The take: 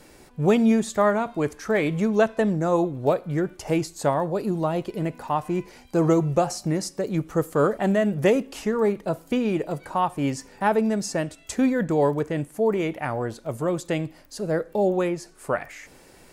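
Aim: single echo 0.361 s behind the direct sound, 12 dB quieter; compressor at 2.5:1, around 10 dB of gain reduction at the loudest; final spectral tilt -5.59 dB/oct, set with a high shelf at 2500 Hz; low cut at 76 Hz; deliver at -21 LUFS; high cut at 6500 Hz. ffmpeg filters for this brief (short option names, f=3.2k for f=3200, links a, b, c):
-af "highpass=76,lowpass=6.5k,highshelf=f=2.5k:g=5,acompressor=threshold=-30dB:ratio=2.5,aecho=1:1:361:0.251,volume=10.5dB"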